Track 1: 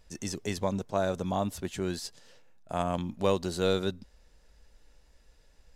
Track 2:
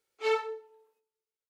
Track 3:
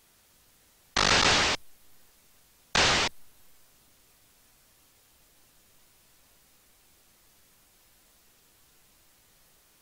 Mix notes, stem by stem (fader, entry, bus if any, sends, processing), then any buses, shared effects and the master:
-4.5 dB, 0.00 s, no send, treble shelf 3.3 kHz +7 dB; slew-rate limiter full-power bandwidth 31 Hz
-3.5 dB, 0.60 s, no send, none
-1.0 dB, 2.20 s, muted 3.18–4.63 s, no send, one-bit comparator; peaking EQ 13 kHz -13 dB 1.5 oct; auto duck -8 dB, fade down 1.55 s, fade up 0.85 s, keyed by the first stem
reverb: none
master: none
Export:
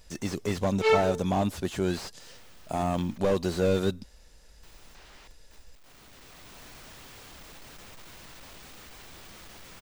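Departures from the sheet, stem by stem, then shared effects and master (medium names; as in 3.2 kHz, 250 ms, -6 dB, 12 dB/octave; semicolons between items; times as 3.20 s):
stem 1 -4.5 dB -> +4.5 dB; stem 2 -3.5 dB -> +5.5 dB; stem 3 -1.0 dB -> -10.5 dB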